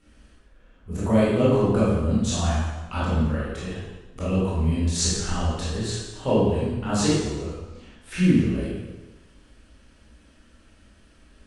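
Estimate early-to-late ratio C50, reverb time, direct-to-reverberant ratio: -2.5 dB, 1.1 s, -10.0 dB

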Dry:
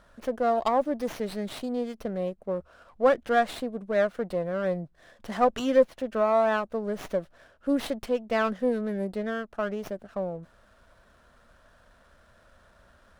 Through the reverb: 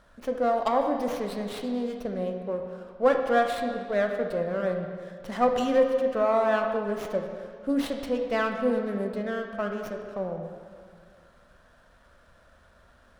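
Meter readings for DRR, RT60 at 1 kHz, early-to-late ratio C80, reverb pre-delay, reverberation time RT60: 3.5 dB, 2.1 s, 6.0 dB, 14 ms, 2.1 s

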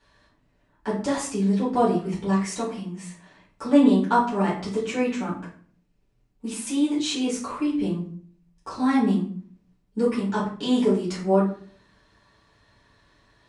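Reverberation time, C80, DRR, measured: 0.50 s, 11.0 dB, -9.0 dB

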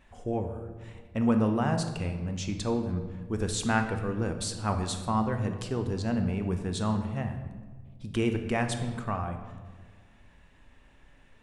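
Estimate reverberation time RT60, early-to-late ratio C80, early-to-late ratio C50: 1.6 s, 10.0 dB, 8.0 dB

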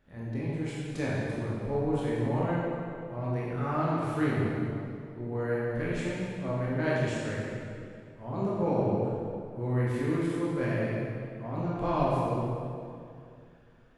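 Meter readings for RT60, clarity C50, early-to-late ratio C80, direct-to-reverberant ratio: 2.4 s, -3.0 dB, -1.0 dB, -7.0 dB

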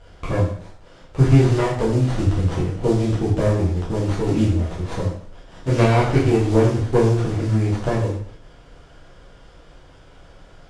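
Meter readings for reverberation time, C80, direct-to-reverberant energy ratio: 0.55 s, 7.5 dB, -6.5 dB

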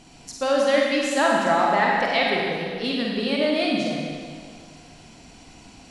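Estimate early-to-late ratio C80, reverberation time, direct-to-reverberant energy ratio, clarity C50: 0.5 dB, 2.0 s, -2.5 dB, -1.0 dB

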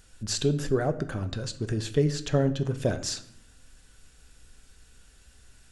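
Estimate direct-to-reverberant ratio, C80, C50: 9.0 dB, 17.0 dB, 14.5 dB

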